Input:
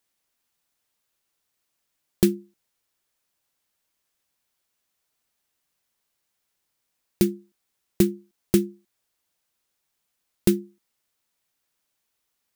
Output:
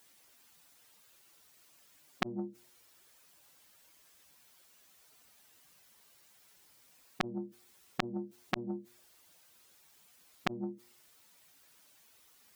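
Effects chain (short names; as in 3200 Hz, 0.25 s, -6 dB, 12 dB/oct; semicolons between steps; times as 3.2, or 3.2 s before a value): spectral contrast raised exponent 1.7; HPF 58 Hz 6 dB/oct; limiter -16 dBFS, peak gain reduction 8.5 dB; compressor 10:1, threshold -27 dBFS, peak gain reduction 7.5 dB; flipped gate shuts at -23 dBFS, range -36 dB; de-hum 119.2 Hz, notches 5; core saturation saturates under 2800 Hz; gain +14 dB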